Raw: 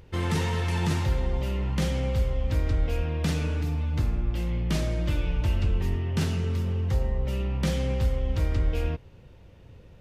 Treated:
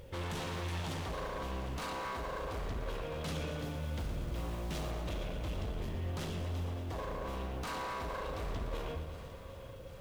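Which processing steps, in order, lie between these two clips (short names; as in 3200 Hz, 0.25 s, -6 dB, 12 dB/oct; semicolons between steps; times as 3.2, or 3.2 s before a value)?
de-hum 78.46 Hz, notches 5; in parallel at +1.5 dB: compressor, threshold -43 dBFS, peak gain reduction 21.5 dB; on the sum: soft clip -23 dBFS, distortion -13 dB; small resonant body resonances 540/3300 Hz, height 17 dB, ringing for 85 ms; 3.59–4.91 companded quantiser 6-bit; wavefolder -26 dBFS; bit-crush 10-bit; on a send: thinning echo 0.753 s, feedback 64%, level -15 dB; on the sum: lo-fi delay 0.117 s, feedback 80%, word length 9-bit, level -11 dB; gain -8 dB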